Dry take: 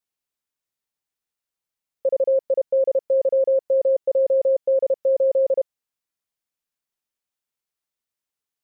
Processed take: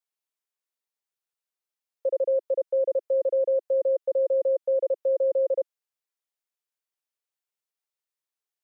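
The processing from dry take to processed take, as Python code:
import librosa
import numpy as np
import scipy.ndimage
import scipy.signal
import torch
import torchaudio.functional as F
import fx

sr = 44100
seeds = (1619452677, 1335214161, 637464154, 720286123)

y = scipy.signal.sosfilt(scipy.signal.butter(8, 350.0, 'highpass', fs=sr, output='sos'), x)
y = y * 10.0 ** (-4.5 / 20.0)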